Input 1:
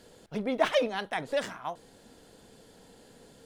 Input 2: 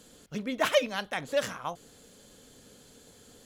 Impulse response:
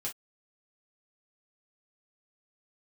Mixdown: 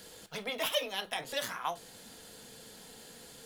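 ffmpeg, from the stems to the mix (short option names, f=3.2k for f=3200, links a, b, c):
-filter_complex "[0:a]acrossover=split=800|2600[a][b][c];[a]acompressor=threshold=-34dB:ratio=4[d];[b]acompressor=threshold=-42dB:ratio=4[e];[c]acompressor=threshold=-47dB:ratio=4[f];[d][e][f]amix=inputs=3:normalize=0,tiltshelf=f=970:g=-6.5,volume=0dB,asplit=2[g][h];[h]volume=-6.5dB[i];[1:a]aexciter=amount=4.8:drive=4.5:freq=10k,volume=-1,volume=-6.5dB[j];[2:a]atrim=start_sample=2205[k];[i][k]afir=irnorm=-1:irlink=0[l];[g][j][l]amix=inputs=3:normalize=0,equalizer=f=190:t=o:w=0.43:g=2.5"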